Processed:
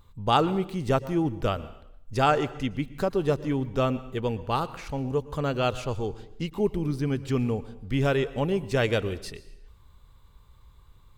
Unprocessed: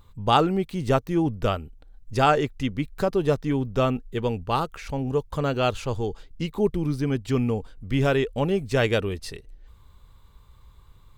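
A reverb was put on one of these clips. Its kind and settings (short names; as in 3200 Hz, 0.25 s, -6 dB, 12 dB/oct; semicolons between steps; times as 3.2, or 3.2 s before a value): plate-style reverb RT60 0.75 s, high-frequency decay 0.95×, pre-delay 0.1 s, DRR 16 dB; gain -2.5 dB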